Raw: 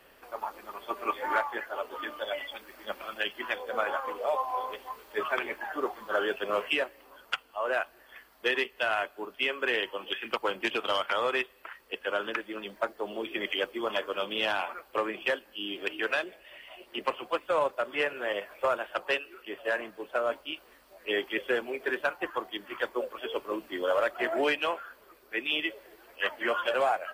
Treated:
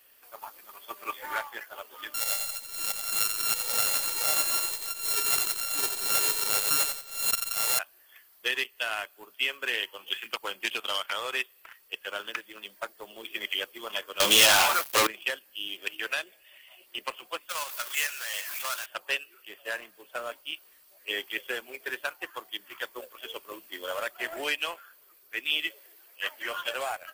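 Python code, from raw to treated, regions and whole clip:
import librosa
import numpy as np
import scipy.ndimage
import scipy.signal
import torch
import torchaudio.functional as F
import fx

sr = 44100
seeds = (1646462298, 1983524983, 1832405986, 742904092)

y = fx.chain(x, sr, fx.sample_sort(block=32),
    fx.echo_feedback(ms=89, feedback_pct=37, wet_db=-7.0),
    fx.pre_swell(db_per_s=77.0), at=(2.14, 7.79))
y = fx.chain(y, sr, fx.peak_eq(hz=800.0, db=4.0, octaves=1.6),
    fx.leveller(passes=5), at=(14.2, 15.07))
y = fx.chain(y, sr, fx.highpass(hz=1100.0, slope=12),
    fx.level_steps(step_db=11),
    fx.power_curve(exponent=0.5), at=(17.49, 18.86))
y = fx.chain(y, sr, fx.transient(attack_db=-2, sustain_db=2),
    fx.highpass(hz=220.0, slope=12), at=(25.67, 26.58))
y = scipy.signal.lfilter([1.0, -0.9], [1.0], y)
y = fx.leveller(y, sr, passes=1)
y = F.gain(torch.from_numpy(y), 6.5).numpy()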